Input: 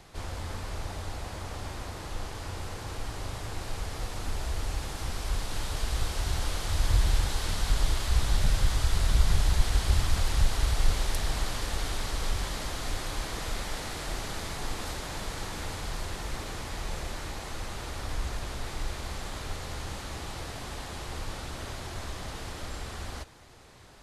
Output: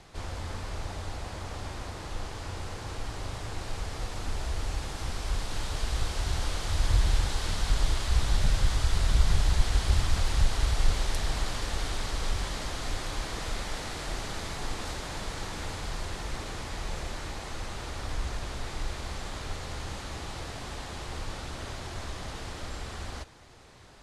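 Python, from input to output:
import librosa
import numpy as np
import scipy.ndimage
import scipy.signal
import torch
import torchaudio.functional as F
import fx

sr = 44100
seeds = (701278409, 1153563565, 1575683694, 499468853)

y = scipy.signal.sosfilt(scipy.signal.butter(2, 9500.0, 'lowpass', fs=sr, output='sos'), x)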